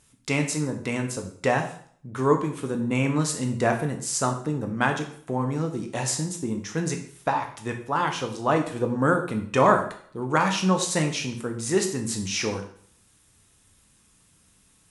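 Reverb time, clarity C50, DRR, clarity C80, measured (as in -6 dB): 0.55 s, 9.0 dB, 3.5 dB, 12.0 dB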